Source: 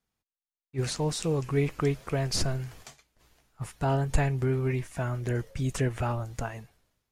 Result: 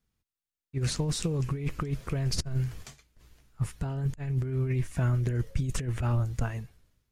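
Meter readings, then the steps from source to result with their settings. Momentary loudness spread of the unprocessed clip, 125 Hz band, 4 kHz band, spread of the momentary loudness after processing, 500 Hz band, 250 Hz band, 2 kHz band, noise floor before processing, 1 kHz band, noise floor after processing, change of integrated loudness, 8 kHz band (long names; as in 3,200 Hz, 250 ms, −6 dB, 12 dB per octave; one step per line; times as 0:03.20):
11 LU, +1.5 dB, −2.0 dB, 7 LU, −7.5 dB, −2.0 dB, −5.0 dB, below −85 dBFS, −7.0 dB, below −85 dBFS, −1.0 dB, −1.5 dB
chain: low-shelf EQ 180 Hz +10 dB
compressor whose output falls as the input rises −24 dBFS, ratio −0.5
parametric band 750 Hz −5.5 dB 0.82 octaves
level −3 dB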